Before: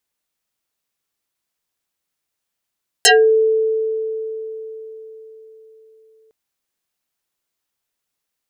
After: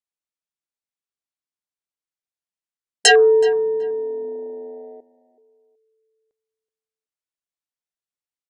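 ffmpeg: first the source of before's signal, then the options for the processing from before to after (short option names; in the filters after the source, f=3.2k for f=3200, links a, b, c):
-f lavfi -i "aevalsrc='0.473*pow(10,-3*t/4.38)*sin(2*PI*441*t+9.4*pow(10,-3*t/0.24)*sin(2*PI*2.67*441*t))':d=3.26:s=44100"
-filter_complex "[0:a]afwtdn=0.0708,asplit=2[a][b];[b]adelay=375,lowpass=f=1.8k:p=1,volume=-15dB,asplit=2[c][d];[d]adelay=375,lowpass=f=1.8k:p=1,volume=0.22[e];[a][c][e]amix=inputs=3:normalize=0,aresample=22050,aresample=44100"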